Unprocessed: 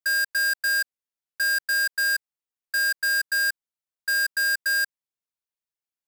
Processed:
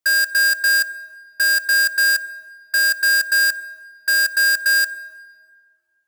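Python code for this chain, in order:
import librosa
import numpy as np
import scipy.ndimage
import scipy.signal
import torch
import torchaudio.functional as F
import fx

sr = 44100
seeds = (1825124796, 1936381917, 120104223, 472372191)

y = fx.rev_plate(x, sr, seeds[0], rt60_s=2.0, hf_ratio=0.55, predelay_ms=0, drr_db=15.5)
y = y * 10.0 ** (7.0 / 20.0)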